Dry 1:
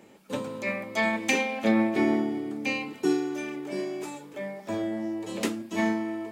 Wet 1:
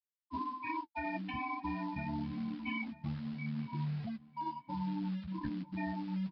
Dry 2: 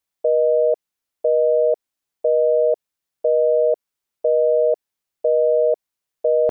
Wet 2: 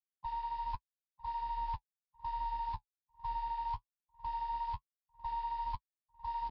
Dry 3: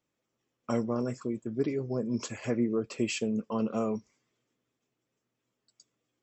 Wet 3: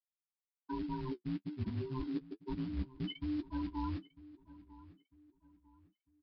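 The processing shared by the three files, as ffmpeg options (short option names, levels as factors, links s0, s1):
-filter_complex "[0:a]afftfilt=real='real(if(between(b,1,1008),(2*floor((b-1)/24)+1)*24-b,b),0)':imag='imag(if(between(b,1,1008),(2*floor((b-1)/24)+1)*24-b,b),0)*if(between(b,1,1008),-1,1)':win_size=2048:overlap=0.75,agate=range=0.0562:threshold=0.00891:ratio=16:detection=peak,afftfilt=real='re*gte(hypot(re,im),0.1)':imag='im*gte(hypot(re,im),0.1)':win_size=1024:overlap=0.75,adynamicequalizer=threshold=0.02:dfrequency=1200:dqfactor=1.4:tfrequency=1200:tqfactor=1.4:attack=5:release=100:ratio=0.375:range=1.5:mode=boostabove:tftype=bell,acrossover=split=85|940[s0][s1][s2];[s0]acompressor=threshold=0.0316:ratio=4[s3];[s1]acompressor=threshold=0.0398:ratio=4[s4];[s2]acompressor=threshold=0.0224:ratio=4[s5];[s3][s4][s5]amix=inputs=3:normalize=0,alimiter=limit=0.0891:level=0:latency=1:release=111,areverse,acompressor=threshold=0.0112:ratio=8,areverse,acrusher=bits=4:mode=log:mix=0:aa=0.000001,flanger=delay=9.4:depth=5.9:regen=-29:speed=1.2:shape=triangular,asplit=2[s6][s7];[s7]adelay=949,lowpass=f=2600:p=1,volume=0.119,asplit=2[s8][s9];[s9]adelay=949,lowpass=f=2600:p=1,volume=0.35,asplit=2[s10][s11];[s11]adelay=949,lowpass=f=2600:p=1,volume=0.35[s12];[s6][s8][s10][s12]amix=inputs=4:normalize=0,aresample=11025,aresample=44100,volume=2.24"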